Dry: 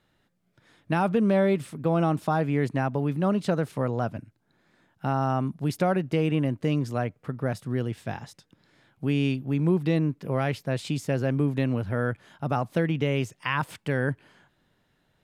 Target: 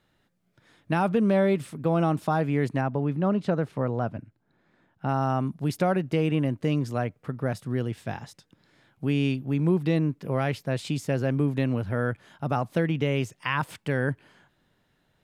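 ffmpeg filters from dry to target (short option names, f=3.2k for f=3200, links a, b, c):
-filter_complex "[0:a]asettb=1/sr,asplit=3[a][b][c];[a]atrim=end=2.814[d];[b]atrim=start=2.81:end=5.09,asetpts=PTS-STARTPTS,afade=t=in:d=0.004:c=qsin,afade=t=out:st=2.276:d=0.004:c=qsin,lowpass=f=2.2k:p=1[e];[c]atrim=start=5.086[f];[d][e]acrossfade=d=0.004:c1=hsin:c2=qsin[g];[g][f]acrossfade=d=0.004:c1=qsin:c2=hsin"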